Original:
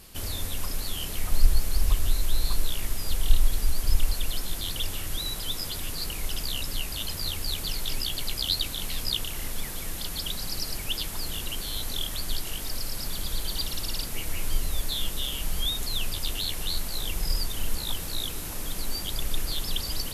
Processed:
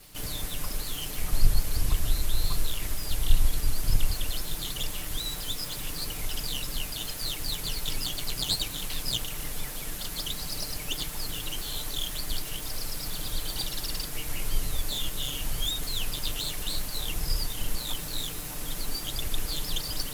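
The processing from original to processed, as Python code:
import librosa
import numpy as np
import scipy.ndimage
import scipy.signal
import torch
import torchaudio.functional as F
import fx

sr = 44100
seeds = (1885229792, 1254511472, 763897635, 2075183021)

y = fx.lower_of_two(x, sr, delay_ms=6.7)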